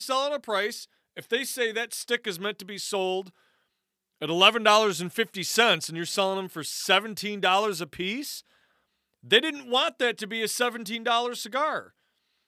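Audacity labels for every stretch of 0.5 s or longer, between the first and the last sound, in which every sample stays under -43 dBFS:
3.290000	4.210000	silence
8.400000	9.240000	silence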